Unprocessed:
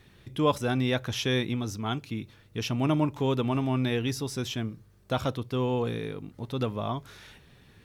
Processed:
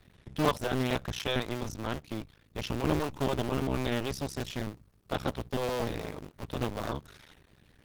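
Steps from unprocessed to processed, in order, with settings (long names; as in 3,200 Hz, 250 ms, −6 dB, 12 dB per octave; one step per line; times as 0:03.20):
sub-harmonics by changed cycles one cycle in 2, muted
Opus 16 kbit/s 48,000 Hz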